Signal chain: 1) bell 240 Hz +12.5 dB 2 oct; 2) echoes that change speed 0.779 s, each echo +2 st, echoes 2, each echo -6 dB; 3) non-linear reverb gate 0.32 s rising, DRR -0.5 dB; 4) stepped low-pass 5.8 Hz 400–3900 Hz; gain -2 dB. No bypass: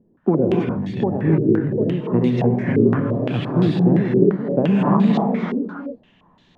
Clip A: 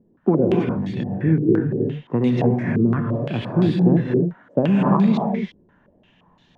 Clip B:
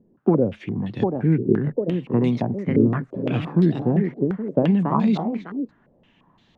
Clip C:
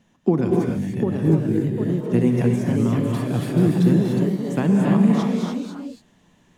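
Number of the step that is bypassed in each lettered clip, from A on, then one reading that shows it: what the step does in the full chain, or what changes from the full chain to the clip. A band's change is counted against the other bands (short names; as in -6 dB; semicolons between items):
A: 2, loudness change -1.0 LU; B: 3, momentary loudness spread change +1 LU; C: 4, 1 kHz band -4.5 dB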